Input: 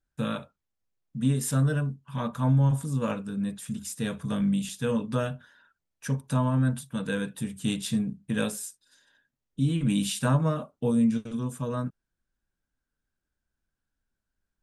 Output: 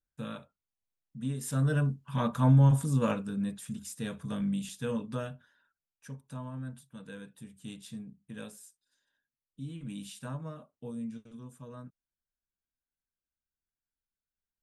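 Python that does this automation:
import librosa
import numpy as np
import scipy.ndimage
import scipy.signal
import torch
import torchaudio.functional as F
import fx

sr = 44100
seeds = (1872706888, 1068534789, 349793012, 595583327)

y = fx.gain(x, sr, db=fx.line((1.38, -9.5), (1.84, 1.0), (2.97, 1.0), (3.86, -6.0), (4.95, -6.0), (6.16, -15.5)))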